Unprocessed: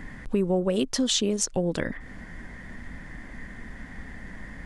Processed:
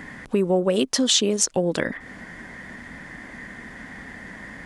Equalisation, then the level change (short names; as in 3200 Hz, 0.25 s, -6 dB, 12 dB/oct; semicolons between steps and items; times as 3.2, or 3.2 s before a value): HPF 260 Hz 6 dB/oct; +6.0 dB